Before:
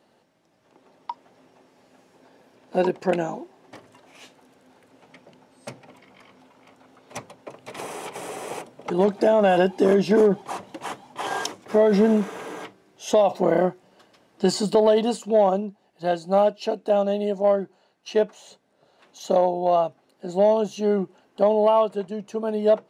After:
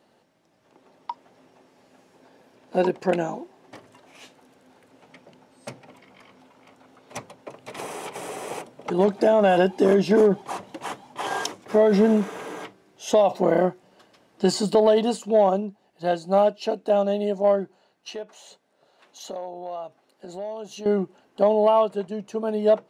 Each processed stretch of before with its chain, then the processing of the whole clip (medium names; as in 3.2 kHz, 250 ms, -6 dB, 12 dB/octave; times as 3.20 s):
18.10–20.86 s: bass shelf 220 Hz -10 dB + compression 2.5:1, threshold -36 dBFS
whole clip: none